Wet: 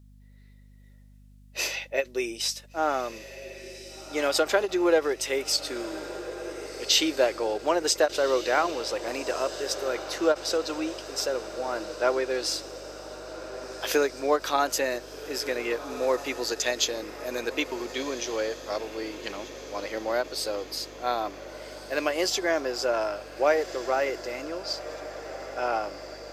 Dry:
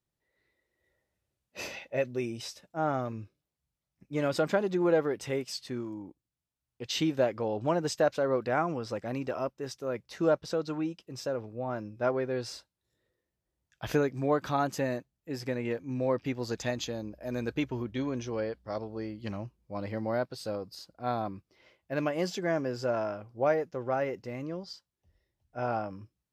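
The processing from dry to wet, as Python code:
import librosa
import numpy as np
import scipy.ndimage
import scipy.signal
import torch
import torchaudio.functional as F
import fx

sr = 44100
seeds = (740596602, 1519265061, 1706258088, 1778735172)

p1 = scipy.signal.sosfilt(scipy.signal.cheby1(3, 1.0, 350.0, 'highpass', fs=sr, output='sos'), x)
p2 = fx.high_shelf(p1, sr, hz=2300.0, db=11.0)
p3 = p2 + fx.echo_diffused(p2, sr, ms=1516, feedback_pct=61, wet_db=-13, dry=0)
p4 = fx.add_hum(p3, sr, base_hz=50, snr_db=24)
p5 = fx.end_taper(p4, sr, db_per_s=430.0)
y = F.gain(torch.from_numpy(p5), 4.0).numpy()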